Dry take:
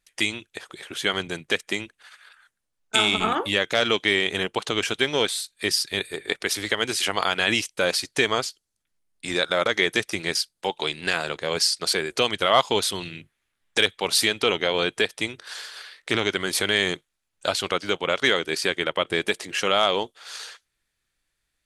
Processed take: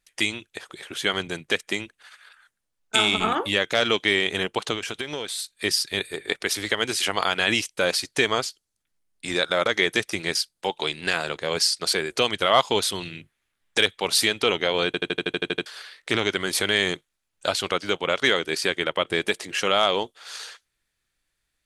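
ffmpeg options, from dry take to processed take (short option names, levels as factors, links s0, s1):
-filter_complex "[0:a]asettb=1/sr,asplit=3[s0][s1][s2];[s0]atrim=end=4.744[s3];[s1]atrim=start=4.74:end=5.39,asetpts=PTS-STARTPTS,afade=t=in:d=0.004:c=qsin,afade=t=out:st=0.646:d=0.004:c=qsin,acompressor=threshold=0.0501:ratio=6:attack=3.2:release=140:knee=1:detection=peak[s4];[s2]atrim=start=5.386[s5];[s3][s4]acrossfade=d=0.004:c1=hsin:c2=qsin[s6];[s6][s5]acrossfade=d=0.004:c1=qsin:c2=hsin,asplit=11[s7][s8][s9][s10][s11][s12][s13][s14][s15][s16][s17];[s7]atrim=end=14.942[s18];[s8]atrim=start=14.858:end=14.942[s19];[s9]atrim=start=14.858:end=14.942[s20];[s10]atrim=start=14.858:end=14.942[s21];[s11]atrim=start=14.858:end=14.942[s22];[s12]atrim=start=14.858:end=14.942[s23];[s13]atrim=start=14.858:end=14.942[s24];[s14]atrim=start=14.858:end=14.942[s25];[s15]atrim=start=14.858:end=14.942[s26];[s16]atrim=start=14.858:end=14.942[s27];[s17]atrim=start=15.658[s28];[s18][s19]acrossfade=d=0.004:c1=hsin:c2=hsin[s29];[s29][s20]acrossfade=d=0.004:c1=hsin:c2=hsin[s30];[s30][s21]acrossfade=d=0.004:c1=hsin:c2=hsin[s31];[s31][s22]acrossfade=d=0.004:c1=hsin:c2=hsin[s32];[s32][s23]acrossfade=d=0.004:c1=hsin:c2=hsin[s33];[s33][s24]acrossfade=d=0.004:c1=hsin:c2=hsin[s34];[s34][s25]acrossfade=d=0.004:c1=hsin:c2=hsin[s35];[s35][s26]acrossfade=d=0.004:c1=hsin:c2=hsin[s36];[s36][s27]acrossfade=d=0.004:c1=hsin:c2=hsin[s37];[s37][s28]acrossfade=d=0.004:c1=hsin:c2=hsin"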